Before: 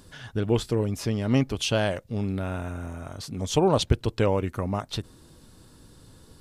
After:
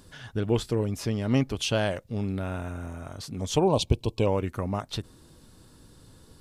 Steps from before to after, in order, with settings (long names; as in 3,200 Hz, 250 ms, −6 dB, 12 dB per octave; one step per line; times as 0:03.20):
gain on a spectral selection 0:03.64–0:04.27, 1,100–2,200 Hz −16 dB
level −1.5 dB